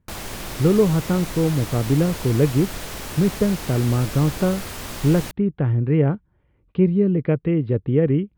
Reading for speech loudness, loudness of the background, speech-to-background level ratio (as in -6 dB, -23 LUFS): -21.0 LUFS, -32.0 LUFS, 11.0 dB